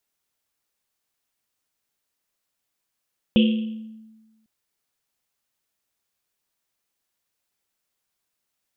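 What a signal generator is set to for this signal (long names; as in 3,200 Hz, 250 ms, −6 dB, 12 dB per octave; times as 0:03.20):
drum after Risset, pitch 220 Hz, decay 1.31 s, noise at 3,000 Hz, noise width 760 Hz, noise 15%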